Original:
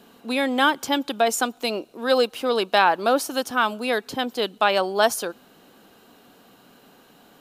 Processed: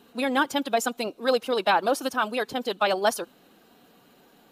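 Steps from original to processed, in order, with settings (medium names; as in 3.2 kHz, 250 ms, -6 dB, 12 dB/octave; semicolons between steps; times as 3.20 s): coarse spectral quantiser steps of 15 dB; time stretch by phase-locked vocoder 0.61×; trim -2 dB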